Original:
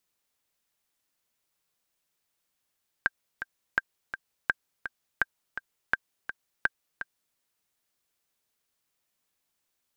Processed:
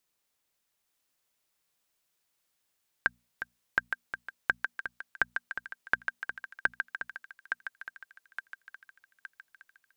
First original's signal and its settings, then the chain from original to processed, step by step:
metronome 167 bpm, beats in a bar 2, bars 6, 1.58 kHz, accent 10.5 dB -9.5 dBFS
hum notches 60/120/180/240 Hz; on a send: thinning echo 866 ms, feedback 55%, high-pass 920 Hz, level -4.5 dB

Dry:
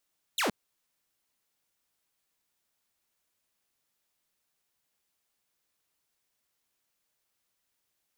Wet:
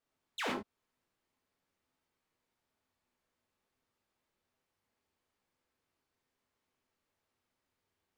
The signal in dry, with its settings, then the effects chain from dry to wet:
laser zap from 4.2 kHz, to 170 Hz, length 0.12 s saw, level -23 dB
low-pass 1.2 kHz 6 dB/octave; compression 12:1, threshold -37 dBFS; gated-style reverb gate 140 ms flat, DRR -2.5 dB

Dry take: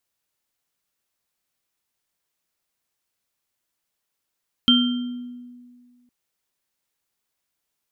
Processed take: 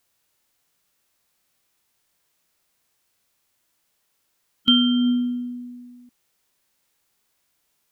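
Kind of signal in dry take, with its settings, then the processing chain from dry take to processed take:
sine partials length 1.41 s, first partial 245 Hz, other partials 1.38/3.15 kHz, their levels -11.5/3 dB, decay 1.94 s, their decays 0.79/0.70 s, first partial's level -14.5 dB
harmonic-percussive split percussive -7 dB; in parallel at +3 dB: compressor with a negative ratio -30 dBFS, ratio -1

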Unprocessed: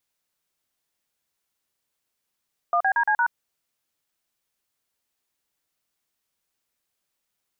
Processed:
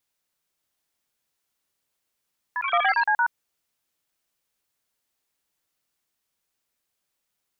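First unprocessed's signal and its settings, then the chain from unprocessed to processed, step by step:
DTMF "1BDC#", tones 75 ms, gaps 40 ms, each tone -20.5 dBFS
ever faster or slower copies 629 ms, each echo +6 st, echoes 3, each echo -6 dB

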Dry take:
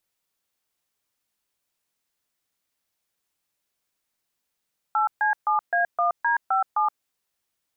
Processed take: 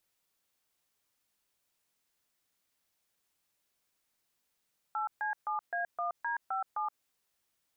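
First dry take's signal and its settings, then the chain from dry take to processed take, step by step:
DTMF "8C7A1D57", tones 123 ms, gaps 136 ms, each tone -21.5 dBFS
peak limiter -27.5 dBFS

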